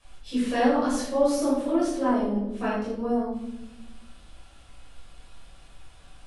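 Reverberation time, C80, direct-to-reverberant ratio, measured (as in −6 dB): 0.95 s, 4.0 dB, −10.5 dB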